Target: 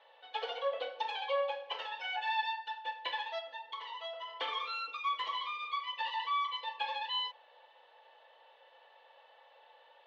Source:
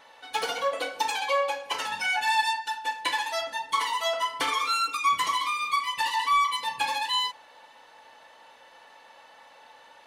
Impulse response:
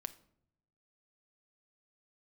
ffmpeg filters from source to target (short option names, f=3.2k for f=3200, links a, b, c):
-filter_complex "[0:a]highpass=f=440:w=0.5412,highpass=f=440:w=1.3066,equalizer=f=510:t=q:w=4:g=4,equalizer=f=1k:t=q:w=4:g=-3,equalizer=f=1.4k:t=q:w=4:g=-7,equalizer=f=2.2k:t=q:w=4:g=-6,equalizer=f=3.3k:t=q:w=4:g=4,lowpass=f=3.4k:w=0.5412,lowpass=f=3.4k:w=1.3066,asplit=3[a][b][c];[a]afade=t=out:st=3.38:d=0.02[d];[b]acompressor=threshold=-34dB:ratio=4,afade=t=in:st=3.38:d=0.02,afade=t=out:st=4.27:d=0.02[e];[c]afade=t=in:st=4.27:d=0.02[f];[d][e][f]amix=inputs=3:normalize=0,volume=-7dB"